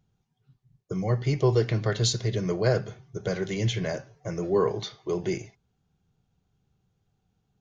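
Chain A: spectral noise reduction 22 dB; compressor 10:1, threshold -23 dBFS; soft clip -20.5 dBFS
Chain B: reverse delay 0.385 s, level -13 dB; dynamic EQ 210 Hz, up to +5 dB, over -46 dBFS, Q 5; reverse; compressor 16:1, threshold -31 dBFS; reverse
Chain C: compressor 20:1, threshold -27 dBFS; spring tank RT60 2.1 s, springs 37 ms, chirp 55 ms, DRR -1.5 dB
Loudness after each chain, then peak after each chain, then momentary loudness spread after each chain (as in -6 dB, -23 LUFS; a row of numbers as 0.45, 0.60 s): -32.0, -36.5, -29.5 LUFS; -21.0, -21.5, -16.0 dBFS; 7, 5, 8 LU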